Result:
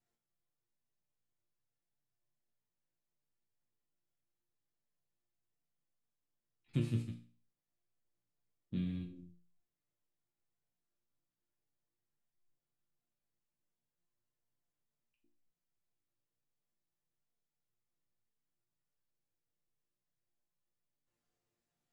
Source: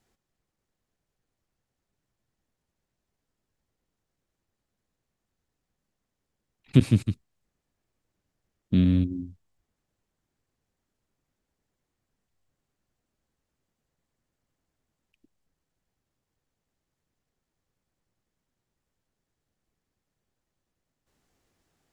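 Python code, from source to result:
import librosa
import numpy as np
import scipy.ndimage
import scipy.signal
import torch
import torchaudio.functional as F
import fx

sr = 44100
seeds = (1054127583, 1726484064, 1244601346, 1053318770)

y = fx.resonator_bank(x, sr, root=46, chord='major', decay_s=0.41)
y = y * librosa.db_to_amplitude(1.0)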